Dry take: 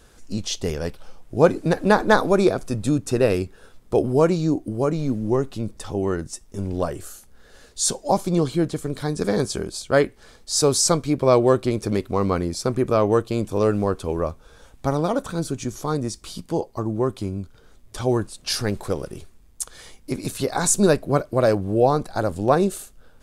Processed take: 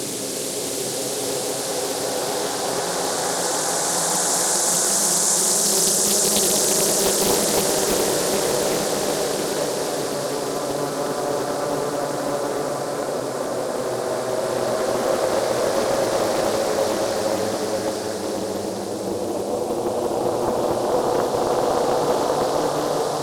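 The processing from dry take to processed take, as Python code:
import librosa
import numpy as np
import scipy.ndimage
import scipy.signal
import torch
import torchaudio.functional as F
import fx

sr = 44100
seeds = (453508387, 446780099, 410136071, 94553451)

y = fx.bin_compress(x, sr, power=0.6)
y = fx.highpass(y, sr, hz=710.0, slope=6)
y = fx.peak_eq(y, sr, hz=1700.0, db=-6.5, octaves=2.1)
y = fx.paulstretch(y, sr, seeds[0], factor=14.0, window_s=0.5, from_s=20.32)
y = fx.echo_wet_highpass(y, sr, ms=358, feedback_pct=77, hz=3800.0, wet_db=-4.5)
y = fx.doppler_dist(y, sr, depth_ms=0.6)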